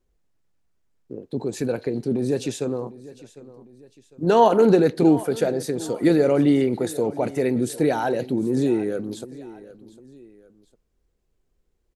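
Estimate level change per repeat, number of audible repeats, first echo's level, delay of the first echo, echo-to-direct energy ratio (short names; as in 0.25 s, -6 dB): -7.5 dB, 2, -18.5 dB, 0.753 s, -18.0 dB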